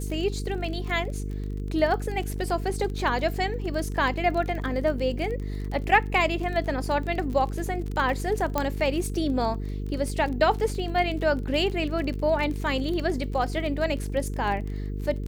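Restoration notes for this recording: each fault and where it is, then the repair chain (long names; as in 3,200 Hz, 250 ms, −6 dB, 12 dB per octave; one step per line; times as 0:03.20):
mains buzz 50 Hz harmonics 9 −31 dBFS
surface crackle 28 per second −31 dBFS
0:08.58: click −10 dBFS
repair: click removal
hum removal 50 Hz, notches 9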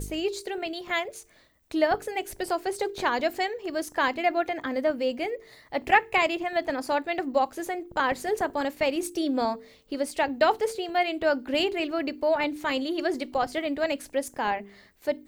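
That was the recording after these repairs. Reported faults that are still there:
none of them is left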